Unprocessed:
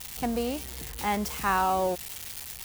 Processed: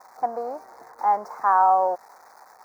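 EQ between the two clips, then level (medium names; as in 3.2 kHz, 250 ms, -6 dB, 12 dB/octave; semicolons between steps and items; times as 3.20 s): resonant high-pass 780 Hz, resonance Q 1.8; Butterworth band-stop 3 kHz, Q 0.54; distance through air 270 m; +6.0 dB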